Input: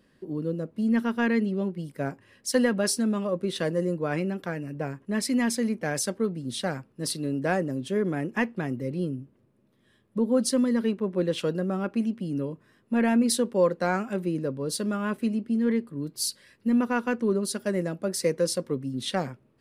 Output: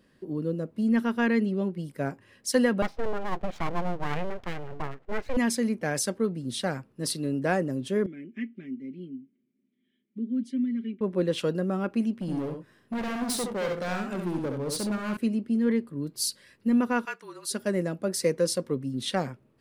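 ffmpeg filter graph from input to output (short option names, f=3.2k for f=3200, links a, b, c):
-filter_complex "[0:a]asettb=1/sr,asplit=3[a][b][c];[a]atrim=end=2.824[d];[b]atrim=start=2.82:end=5.37,asetpts=PTS-STARTPTS,afade=t=in:d=0.004:c=qsin,afade=t=out:st=2.546:d=0.004:c=qsin,lowpass=f=2.4k:w=0.5412,lowpass=f=2.4k:w=1.3066,aeval=exprs='abs(val(0))':c=same[e];[c]atrim=start=5.366[f];[d][e]acrossfade=d=0.004:c1=hsin:c2=qsin[g];[g][f]acrossfade=d=0.004:c1=qsin:c2=hsin,asettb=1/sr,asplit=3[h][i][j];[h]atrim=end=8.064[k];[i]atrim=start=8.06:end=11.01,asetpts=PTS-STARTPTS,afade=t=in:d=0.004:c=qsin,afade=t=out:st=2.946:d=0.004:c=qsin,asplit=3[l][m][n];[l]bandpass=f=270:t=q:w=8,volume=0dB[o];[m]bandpass=f=2.29k:t=q:w=8,volume=-6dB[p];[n]bandpass=f=3.01k:t=q:w=8,volume=-9dB[q];[o][p][q]amix=inputs=3:normalize=0,equalizer=f=4.7k:t=o:w=0.66:g=-5.5,aecho=1:1:5.1:0.64,atrim=end_sample=130095[r];[j]atrim=start=11.006[s];[k][r]acrossfade=d=0.004:c1=hsin:c2=qsin[t];[t][s]acrossfade=d=0.004:c1=qsin:c2=hsin,asettb=1/sr,asplit=3[u][v][w];[u]atrim=end=12.204[x];[v]atrim=start=12.2:end=15.17,asetpts=PTS-STARTPTS,afade=t=in:d=0.004:c=qsin,afade=t=out:st=2.966:d=0.004:c=qsin,asoftclip=type=hard:threshold=-28dB,aecho=1:1:67|90:0.562|0.237,atrim=end_sample=130977[y];[w]atrim=start=15.166[z];[x][y]acrossfade=d=0.004:c1=hsin:c2=qsin[aa];[aa][z]acrossfade=d=0.004:c1=qsin:c2=hsin,asettb=1/sr,asplit=3[ab][ac][ad];[ab]atrim=end=17.054[ae];[ac]atrim=start=17.05:end=17.51,asetpts=PTS-STARTPTS,afade=t=in:d=0.004:c=qsin,afade=t=out:st=0.456:d=0.004:c=qsin,highpass=1.2k,bandreject=f=3.1k:w=23,afreqshift=-38[af];[ad]atrim=start=17.506[ag];[ae][af]acrossfade=d=0.004:c1=hsin:c2=qsin[ah];[ah][ag]acrossfade=d=0.004:c1=qsin:c2=hsin"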